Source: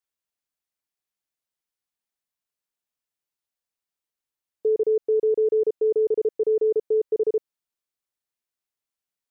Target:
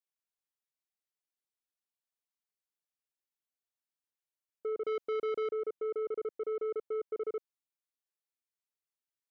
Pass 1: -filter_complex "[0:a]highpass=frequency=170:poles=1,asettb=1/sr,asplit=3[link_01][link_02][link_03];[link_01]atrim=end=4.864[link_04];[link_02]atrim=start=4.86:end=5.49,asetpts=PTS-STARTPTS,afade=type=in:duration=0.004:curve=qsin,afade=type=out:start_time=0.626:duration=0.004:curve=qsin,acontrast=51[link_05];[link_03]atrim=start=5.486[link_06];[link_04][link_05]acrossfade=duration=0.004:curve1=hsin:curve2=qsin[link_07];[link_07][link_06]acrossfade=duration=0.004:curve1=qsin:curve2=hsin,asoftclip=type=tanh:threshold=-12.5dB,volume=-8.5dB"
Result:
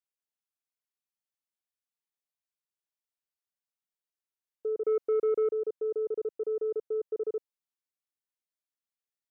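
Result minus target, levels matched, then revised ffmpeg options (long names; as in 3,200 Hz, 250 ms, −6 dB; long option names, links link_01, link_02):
soft clipping: distortion −10 dB
-filter_complex "[0:a]highpass=frequency=170:poles=1,asettb=1/sr,asplit=3[link_01][link_02][link_03];[link_01]atrim=end=4.864[link_04];[link_02]atrim=start=4.86:end=5.49,asetpts=PTS-STARTPTS,afade=type=in:duration=0.004:curve=qsin,afade=type=out:start_time=0.626:duration=0.004:curve=qsin,acontrast=51[link_05];[link_03]atrim=start=5.486[link_06];[link_04][link_05]acrossfade=duration=0.004:curve1=hsin:curve2=qsin[link_07];[link_07][link_06]acrossfade=duration=0.004:curve1=qsin:curve2=hsin,asoftclip=type=tanh:threshold=-22.5dB,volume=-8.5dB"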